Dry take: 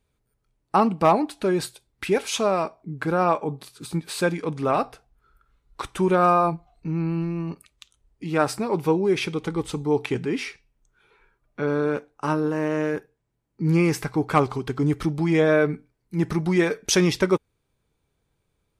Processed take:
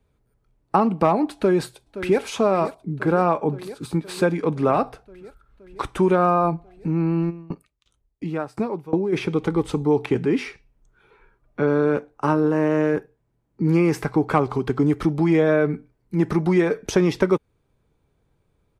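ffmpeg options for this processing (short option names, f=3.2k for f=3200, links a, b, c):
-filter_complex "[0:a]asplit=2[a][b];[b]afade=t=in:st=1.34:d=0.01,afade=t=out:st=2.22:d=0.01,aecho=0:1:520|1040|1560|2080|2600|3120|3640|4160|4680|5200:0.16788|0.12591|0.0944327|0.0708245|0.0531184|0.0398388|0.0298791|0.0224093|0.016807|0.0126052[c];[a][c]amix=inputs=2:normalize=0,asplit=3[d][e][f];[d]afade=t=out:st=7.29:d=0.02[g];[e]aeval=exprs='val(0)*pow(10,-24*if(lt(mod(2.8*n/s,1),2*abs(2.8)/1000),1-mod(2.8*n/s,1)/(2*abs(2.8)/1000),(mod(2.8*n/s,1)-2*abs(2.8)/1000)/(1-2*abs(2.8)/1000))/20)':c=same,afade=t=in:st=7.29:d=0.02,afade=t=out:st=9.12:d=0.02[h];[f]afade=t=in:st=9.12:d=0.02[i];[g][h][i]amix=inputs=3:normalize=0,highshelf=f=2k:g=-10.5,acrossover=split=210|1600[j][k][l];[j]acompressor=threshold=-35dB:ratio=4[m];[k]acompressor=threshold=-23dB:ratio=4[n];[l]acompressor=threshold=-39dB:ratio=4[o];[m][n][o]amix=inputs=3:normalize=0,volume=7dB"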